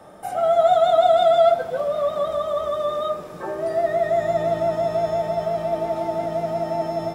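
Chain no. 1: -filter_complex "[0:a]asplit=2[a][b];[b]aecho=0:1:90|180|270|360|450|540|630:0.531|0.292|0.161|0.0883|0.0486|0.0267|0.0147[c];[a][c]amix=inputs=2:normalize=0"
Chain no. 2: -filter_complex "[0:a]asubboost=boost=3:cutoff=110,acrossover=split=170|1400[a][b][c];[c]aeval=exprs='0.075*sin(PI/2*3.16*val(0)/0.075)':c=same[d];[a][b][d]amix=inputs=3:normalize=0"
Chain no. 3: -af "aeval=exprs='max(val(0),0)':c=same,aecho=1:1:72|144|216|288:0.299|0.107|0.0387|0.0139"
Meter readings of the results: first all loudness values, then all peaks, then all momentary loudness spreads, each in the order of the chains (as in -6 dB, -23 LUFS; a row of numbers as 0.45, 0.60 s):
-19.5, -20.0, -25.5 LUFS; -3.0, -6.5, -5.5 dBFS; 10, 9, 10 LU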